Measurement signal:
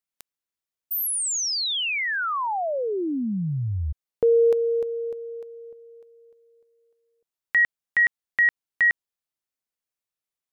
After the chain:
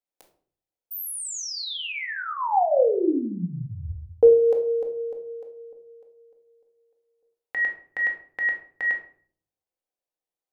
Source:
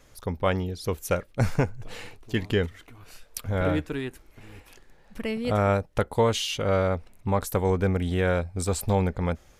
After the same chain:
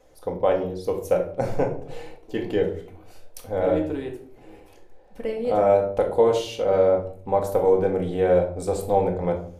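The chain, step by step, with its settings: high-order bell 540 Hz +12 dB; simulated room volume 580 m³, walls furnished, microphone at 2 m; trim -8.5 dB

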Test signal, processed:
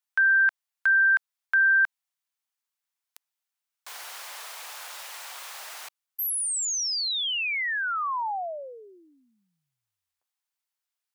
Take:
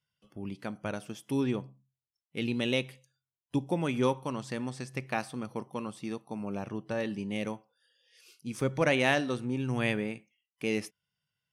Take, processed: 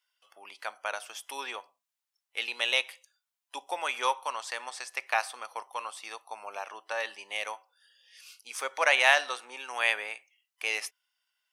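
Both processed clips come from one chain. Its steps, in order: high-pass 730 Hz 24 dB/octave; trim +7 dB

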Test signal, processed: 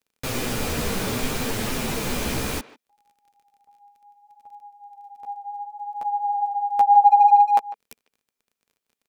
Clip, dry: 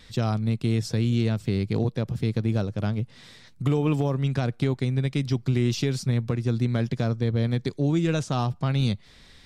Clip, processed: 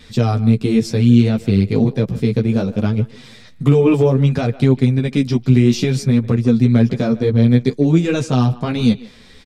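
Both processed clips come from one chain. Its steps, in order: chorus voices 2, 0.63 Hz, delay 12 ms, depth 4.4 ms; crackle 27 per s -59 dBFS; small resonant body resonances 230/440/2400 Hz, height 7 dB, ringing for 30 ms; speakerphone echo 150 ms, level -17 dB; trim +9 dB

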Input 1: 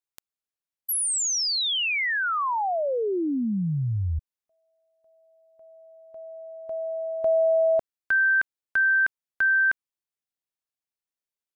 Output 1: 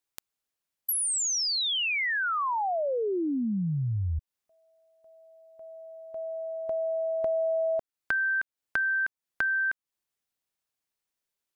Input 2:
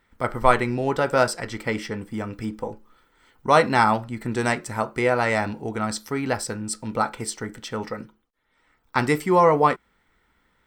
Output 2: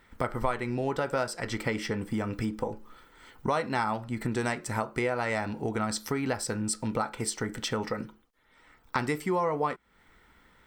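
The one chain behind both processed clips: compression 4:1, threshold -34 dBFS; trim +5.5 dB

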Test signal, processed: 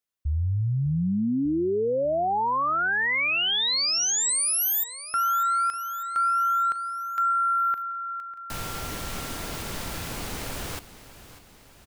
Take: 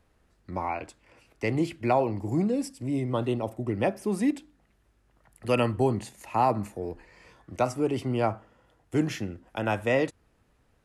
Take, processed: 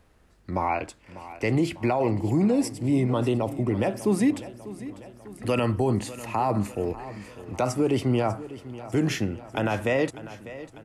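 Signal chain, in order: peak limiter -20.5 dBFS; feedback delay 597 ms, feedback 56%, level -15.5 dB; trim +6 dB

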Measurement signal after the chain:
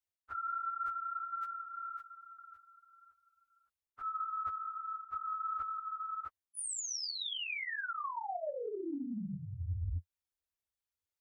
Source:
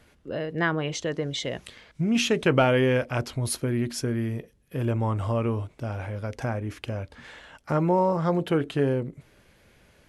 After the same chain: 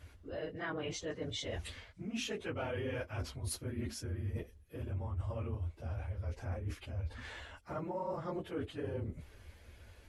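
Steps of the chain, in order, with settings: phase randomisation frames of 50 ms; resonant low shelf 110 Hz +8 dB, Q 3; reverse; compression 5:1, threshold -35 dBFS; reverse; trim -2.5 dB

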